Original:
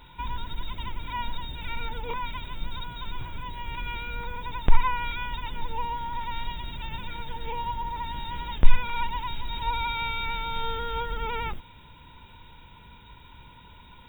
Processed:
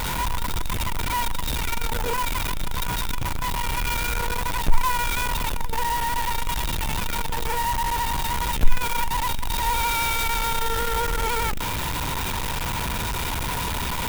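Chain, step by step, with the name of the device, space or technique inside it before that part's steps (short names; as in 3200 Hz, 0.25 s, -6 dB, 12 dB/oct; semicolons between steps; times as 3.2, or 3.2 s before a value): early CD player with a faulty converter (zero-crossing step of -19 dBFS; clock jitter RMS 0.04 ms); gain -1.5 dB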